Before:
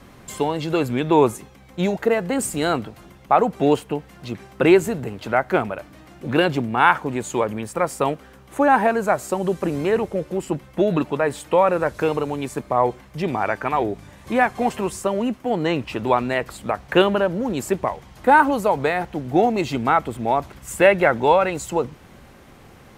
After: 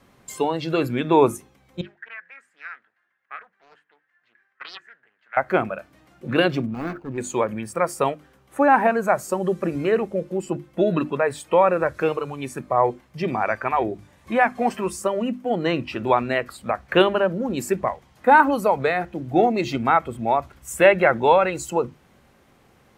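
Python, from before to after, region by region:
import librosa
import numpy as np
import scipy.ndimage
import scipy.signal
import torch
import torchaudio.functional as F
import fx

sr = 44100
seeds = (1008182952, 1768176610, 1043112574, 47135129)

y = fx.chain(x, sr, fx.bandpass_q(hz=1700.0, q=8.3),
    fx.doppler_dist(depth_ms=0.56), at=(1.81, 5.37))
y = fx.chain(y, sr, fx.median_filter(points=41),
    fx.high_shelf(hz=2700.0, db=-10.0),
    fx.overload_stage(gain_db=20.5), at=(6.66, 7.18))
y = fx.hum_notches(y, sr, base_hz=50, count=7)
y = fx.noise_reduce_blind(y, sr, reduce_db=9)
y = fx.low_shelf(y, sr, hz=60.0, db=-6.0)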